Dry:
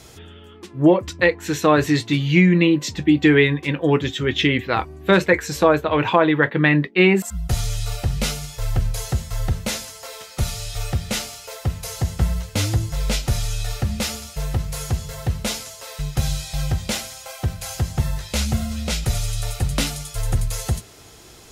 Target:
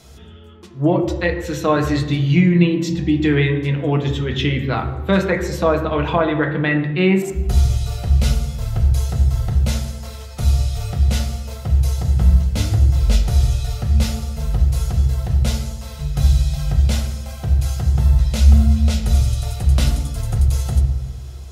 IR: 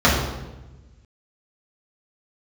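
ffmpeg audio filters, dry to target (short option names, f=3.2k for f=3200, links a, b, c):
-filter_complex "[0:a]asplit=2[a][b];[1:a]atrim=start_sample=2205,lowshelf=f=66:g=8[c];[b][c]afir=irnorm=-1:irlink=0,volume=-26.5dB[d];[a][d]amix=inputs=2:normalize=0,volume=-4.5dB"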